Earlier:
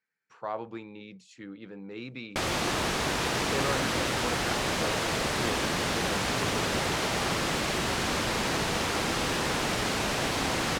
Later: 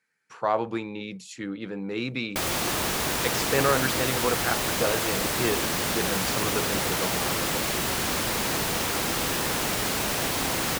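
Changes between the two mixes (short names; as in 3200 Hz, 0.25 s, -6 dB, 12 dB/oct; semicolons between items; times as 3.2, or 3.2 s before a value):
speech +9.5 dB; master: remove air absorption 60 m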